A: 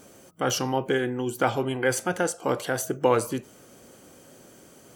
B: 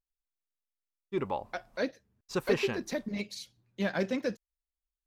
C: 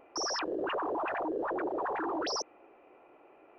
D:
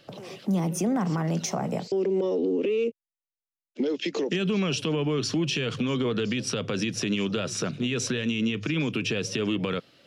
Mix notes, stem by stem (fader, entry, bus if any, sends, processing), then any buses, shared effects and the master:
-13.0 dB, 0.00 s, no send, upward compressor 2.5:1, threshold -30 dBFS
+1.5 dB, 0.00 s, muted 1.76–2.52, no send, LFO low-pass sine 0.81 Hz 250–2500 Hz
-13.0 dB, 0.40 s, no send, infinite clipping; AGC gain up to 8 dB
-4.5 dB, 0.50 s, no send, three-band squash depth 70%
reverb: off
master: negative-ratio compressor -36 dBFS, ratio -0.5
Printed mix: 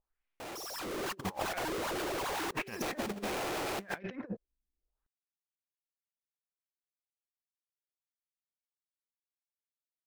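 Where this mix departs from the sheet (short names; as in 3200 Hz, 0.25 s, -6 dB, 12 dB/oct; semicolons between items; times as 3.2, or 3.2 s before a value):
stem A: muted; stem D: muted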